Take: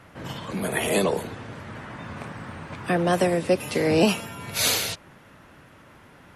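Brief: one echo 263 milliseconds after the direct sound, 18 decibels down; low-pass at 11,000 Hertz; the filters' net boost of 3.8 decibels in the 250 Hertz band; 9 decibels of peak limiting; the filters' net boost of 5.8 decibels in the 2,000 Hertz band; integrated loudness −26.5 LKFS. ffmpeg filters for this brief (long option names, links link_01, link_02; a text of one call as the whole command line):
ffmpeg -i in.wav -af "lowpass=11000,equalizer=frequency=250:width_type=o:gain=5.5,equalizer=frequency=2000:width_type=o:gain=7,alimiter=limit=-13dB:level=0:latency=1,aecho=1:1:263:0.126,volume=-1dB" out.wav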